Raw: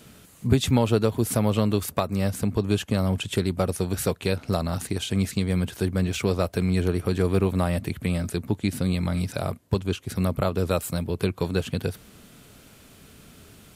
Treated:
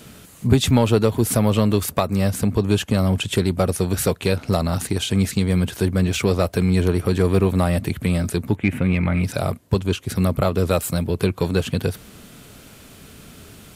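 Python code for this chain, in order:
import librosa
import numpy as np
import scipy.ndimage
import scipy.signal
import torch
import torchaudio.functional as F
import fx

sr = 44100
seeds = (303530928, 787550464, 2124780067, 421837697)

p1 = fx.high_shelf_res(x, sr, hz=3400.0, db=-13.0, q=3.0, at=(8.55, 9.23), fade=0.02)
p2 = 10.0 ** (-22.0 / 20.0) * np.tanh(p1 / 10.0 ** (-22.0 / 20.0))
p3 = p1 + (p2 * librosa.db_to_amplitude(-5.0))
y = p3 * librosa.db_to_amplitude(2.5)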